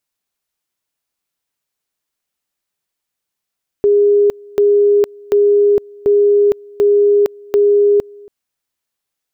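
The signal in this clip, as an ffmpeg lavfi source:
-f lavfi -i "aevalsrc='pow(10,(-7.5-26.5*gte(mod(t,0.74),0.46))/20)*sin(2*PI*409*t)':d=4.44:s=44100"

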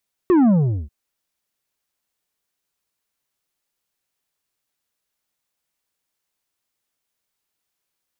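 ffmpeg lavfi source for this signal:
-f lavfi -i "aevalsrc='0.251*clip((0.59-t)/0.41,0,1)*tanh(2.24*sin(2*PI*380*0.59/log(65/380)*(exp(log(65/380)*t/0.59)-1)))/tanh(2.24)':d=0.59:s=44100"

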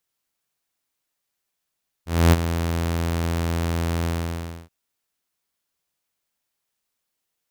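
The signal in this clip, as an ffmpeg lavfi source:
-f lavfi -i "aevalsrc='0.398*(2*mod(83.9*t,1)-1)':d=2.628:s=44100,afade=t=in:d=0.265,afade=t=out:st=0.265:d=0.027:silence=0.282,afade=t=out:st=2:d=0.628"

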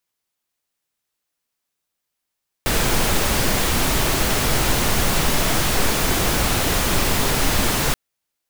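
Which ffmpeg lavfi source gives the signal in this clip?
-f lavfi -i "anoisesrc=c=pink:a=0.61:d=5.28:r=44100:seed=1"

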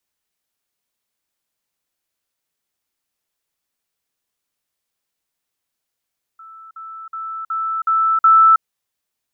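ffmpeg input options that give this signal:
-f lavfi -i "aevalsrc='pow(10,(-37+6*floor(t/0.37))/20)*sin(2*PI*1320*t)*clip(min(mod(t,0.37),0.32-mod(t,0.37))/0.005,0,1)':d=2.22:s=44100"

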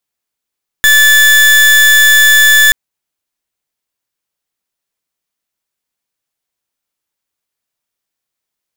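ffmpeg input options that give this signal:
-f lavfi -i "aevalsrc='0.501*(2*lt(mod(1740*t,1),0.36)-1)':d=1.88:s=44100"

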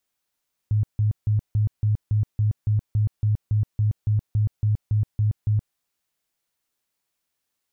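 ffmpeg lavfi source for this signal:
-f lavfi -i "aevalsrc='0.141*sin(2*PI*106*mod(t,0.28))*lt(mod(t,0.28),13/106)':d=5.04:s=44100"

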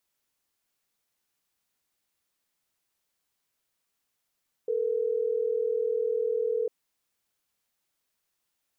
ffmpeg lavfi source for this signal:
-f lavfi -i "aevalsrc='0.0422*(sin(2*PI*440*t)+sin(2*PI*480*t))*clip(min(mod(t,6),2-mod(t,6))/0.005,0,1)':d=3.12:s=44100"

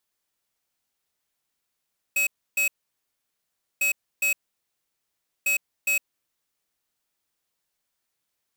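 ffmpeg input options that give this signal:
-f lavfi -i "aevalsrc='0.075*(2*lt(mod(2560*t,1),0.5)-1)*clip(min(mod(mod(t,1.65),0.41),0.11-mod(mod(t,1.65),0.41))/0.005,0,1)*lt(mod(t,1.65),0.82)':d=4.95:s=44100"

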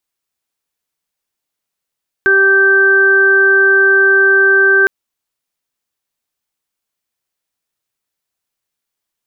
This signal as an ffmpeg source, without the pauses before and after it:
-f lavfi -i "aevalsrc='0.224*sin(2*PI*390*t)+0.0251*sin(2*PI*780*t)+0.0501*sin(2*PI*1170*t)+0.422*sin(2*PI*1560*t)':d=2.61:s=44100"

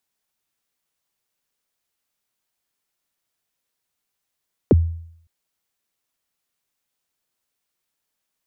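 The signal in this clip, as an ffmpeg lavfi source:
-f lavfi -i "aevalsrc='0.447*pow(10,-3*t/0.66)*sin(2*PI*(540*0.028/log(83/540)*(exp(log(83/540)*min(t,0.028)/0.028)-1)+83*max(t-0.028,0)))':d=0.56:s=44100"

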